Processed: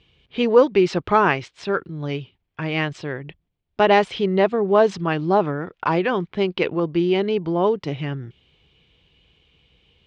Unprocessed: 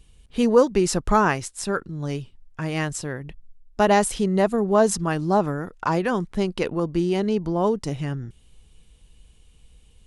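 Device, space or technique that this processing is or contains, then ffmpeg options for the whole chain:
guitar cabinet: -af "highpass=110,equalizer=f=220:t=q:w=4:g=-6,equalizer=f=380:t=q:w=4:g=3,equalizer=f=2.3k:t=q:w=4:g=6,equalizer=f=3.2k:t=q:w=4:g=5,lowpass=f=4.2k:w=0.5412,lowpass=f=4.2k:w=1.3066,volume=2dB"

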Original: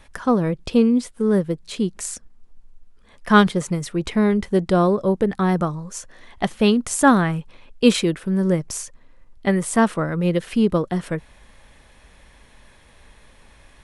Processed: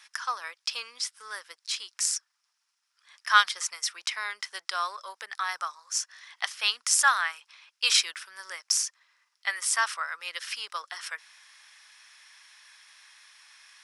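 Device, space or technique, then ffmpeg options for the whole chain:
headphones lying on a table: -af "highpass=f=1.2k:w=0.5412,highpass=f=1.2k:w=1.3066,equalizer=f=5.3k:t=o:w=0.41:g=12"

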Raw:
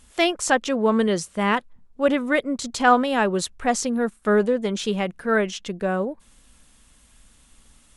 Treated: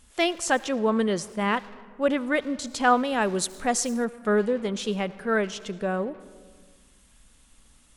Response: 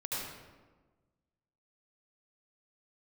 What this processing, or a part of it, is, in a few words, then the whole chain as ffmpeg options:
saturated reverb return: -filter_complex "[0:a]asplit=2[a][b];[1:a]atrim=start_sample=2205[c];[b][c]afir=irnorm=-1:irlink=0,asoftclip=type=tanh:threshold=-23dB,volume=-14.5dB[d];[a][d]amix=inputs=2:normalize=0,asettb=1/sr,asplit=3[e][f][g];[e]atrim=end=3.214[h];[f]atrim=start=3.21:end=4.05,asetpts=PTS-STARTPTS,afade=t=in:d=0.004:c=qsin,afade=t=out:st=0.836:d=0.004:c=qsin,highshelf=f=7.8k:g=11[i];[g]atrim=start=4.046[j];[h][i]acrossfade=d=0.004:c1=hsin:c2=qsin[k];[k][j]acrossfade=d=0.004:c1=qsin:c2=hsin,volume=-4dB"

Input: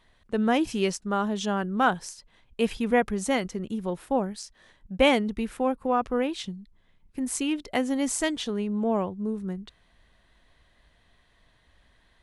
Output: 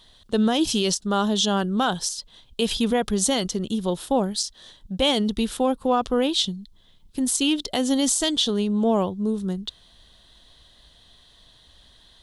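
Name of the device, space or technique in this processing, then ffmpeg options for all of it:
over-bright horn tweeter: -af "highshelf=f=2.8k:t=q:w=3:g=7,alimiter=limit=-17dB:level=0:latency=1:release=58,volume=5.5dB"

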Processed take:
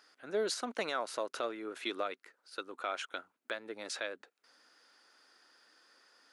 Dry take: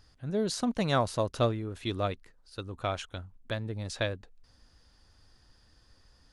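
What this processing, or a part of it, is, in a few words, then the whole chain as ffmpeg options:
laptop speaker: -af "highpass=f=320:w=0.5412,highpass=f=320:w=1.3066,equalizer=f=1.4k:t=o:w=0.41:g=8,equalizer=f=2.2k:t=o:w=0.58:g=5,alimiter=limit=-23.5dB:level=0:latency=1:release=237"

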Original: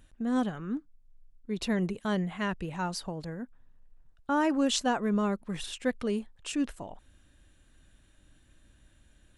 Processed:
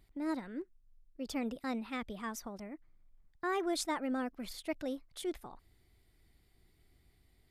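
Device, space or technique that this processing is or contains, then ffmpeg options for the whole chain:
nightcore: -af "asetrate=55125,aresample=44100,volume=-7.5dB"

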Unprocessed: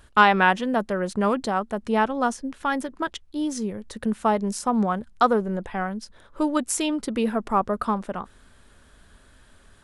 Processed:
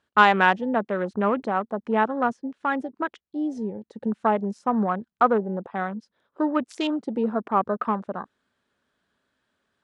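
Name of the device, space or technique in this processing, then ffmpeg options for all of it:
over-cleaned archive recording: -af "highpass=170,lowpass=5.6k,afwtdn=0.02"

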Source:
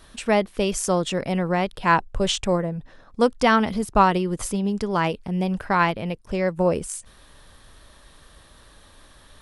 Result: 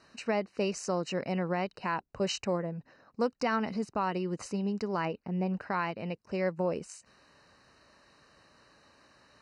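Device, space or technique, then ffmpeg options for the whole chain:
PA system with an anti-feedback notch: -filter_complex "[0:a]asettb=1/sr,asplit=3[a][b][c];[a]atrim=end=5.054[d];[b]atrim=start=5.05:end=5.61,asetpts=PTS-STARTPTS,afade=t=in:d=0.004:c=qsin,afade=t=out:st=0.556:d=0.004:c=qsin,aemphasis=mode=reproduction:type=75fm[e];[c]atrim=start=5.606[f];[d][e]acrossfade=d=0.004:c1=hsin:c2=qsin[g];[g][f]acrossfade=d=0.004:c1=qsin:c2=hsin,highpass=140,asuperstop=centerf=3400:order=20:qfactor=4.6,alimiter=limit=-13dB:level=0:latency=1:release=205,lowpass=f=6.6k:w=0.5412,lowpass=f=6.6k:w=1.3066,volume=-7dB"

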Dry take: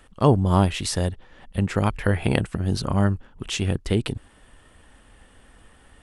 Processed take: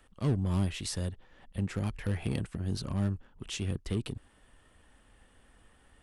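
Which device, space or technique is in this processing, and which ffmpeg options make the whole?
one-band saturation: -filter_complex "[0:a]acrossover=split=330|3200[a][b][c];[b]asoftclip=type=tanh:threshold=-30.5dB[d];[a][d][c]amix=inputs=3:normalize=0,volume=-9dB"

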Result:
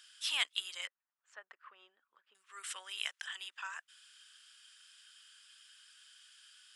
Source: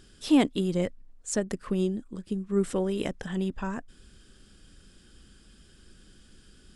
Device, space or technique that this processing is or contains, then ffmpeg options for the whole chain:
headphones lying on a table: -filter_complex "[0:a]highpass=f=1.3k:w=0.5412,highpass=f=1.3k:w=1.3066,equalizer=f=3k:t=o:w=0.42:g=5.5,asettb=1/sr,asplit=3[a][b][c];[a]atrim=end=0.874[d];[b]atrim=start=0.87:end=2.35,asetpts=PTS-STARTPTS,afade=t=in:d=0.004:c=qsin,afade=t=out:st=1.476:d=0.004:c=qsin,lowpass=1k[e];[c]atrim=start=2.346[f];[d][e]acrossfade=d=0.004:c1=hsin:c2=qsin[g];[g][f]acrossfade=d=0.004:c1=qsin:c2=hsin"

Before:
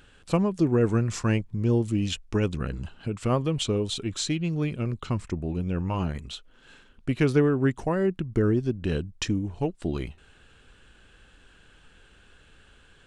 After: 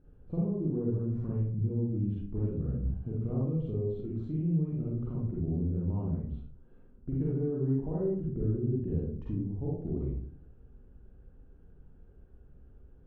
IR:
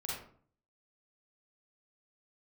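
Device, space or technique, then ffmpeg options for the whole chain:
television next door: -filter_complex "[0:a]acompressor=threshold=-29dB:ratio=3,lowpass=390[a];[1:a]atrim=start_sample=2205[b];[a][b]afir=irnorm=-1:irlink=0"

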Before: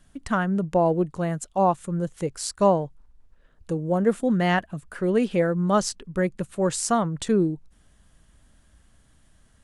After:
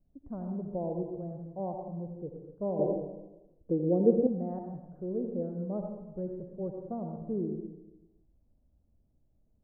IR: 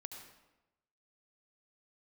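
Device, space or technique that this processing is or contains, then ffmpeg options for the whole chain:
next room: -filter_complex "[0:a]lowpass=f=640:w=0.5412,lowpass=f=640:w=1.3066[a];[1:a]atrim=start_sample=2205[b];[a][b]afir=irnorm=-1:irlink=0,asettb=1/sr,asplit=3[c][d][e];[c]atrim=end=2.794[f];[d]atrim=start=2.79:end=4.27,asetpts=PTS-STARTPTS,afade=t=in:d=0.004:c=qsin,afade=t=out:st=1.476:d=0.004:c=qsin,equalizer=f=340:w=0.71:g=13.5[g];[e]atrim=start=4.266[h];[f][g]acrossfade=d=0.004:c1=hsin:c2=qsin[i];[i][h]acrossfade=d=0.004:c1=qsin:c2=hsin,volume=-7dB"

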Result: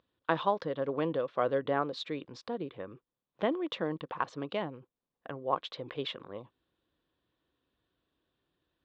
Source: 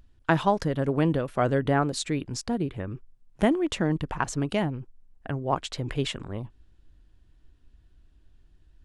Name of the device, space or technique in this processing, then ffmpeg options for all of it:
kitchen radio: -af "highpass=210,equalizer=f=230:t=q:w=4:g=-3,equalizer=f=510:t=q:w=4:g=9,equalizer=f=1.1k:t=q:w=4:g=8,equalizer=f=3.6k:t=q:w=4:g=7,lowpass=f=4.4k:w=0.5412,lowpass=f=4.4k:w=1.3066,volume=-8.5dB"

